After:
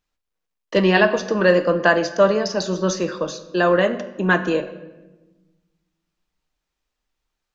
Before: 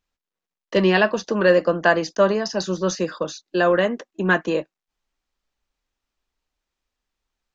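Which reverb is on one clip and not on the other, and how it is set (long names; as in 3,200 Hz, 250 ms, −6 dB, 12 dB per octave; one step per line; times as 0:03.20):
rectangular room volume 670 cubic metres, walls mixed, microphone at 0.48 metres
level +1 dB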